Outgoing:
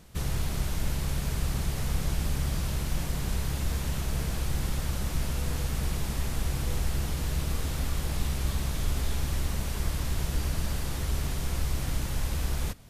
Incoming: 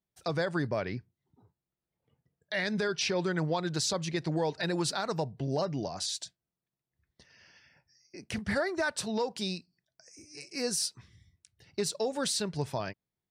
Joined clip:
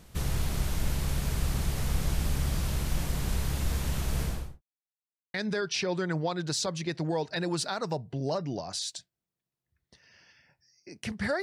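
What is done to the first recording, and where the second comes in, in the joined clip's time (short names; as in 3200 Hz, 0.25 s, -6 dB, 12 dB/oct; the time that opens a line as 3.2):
outgoing
4.21–4.62 studio fade out
4.62–5.34 mute
5.34 switch to incoming from 2.61 s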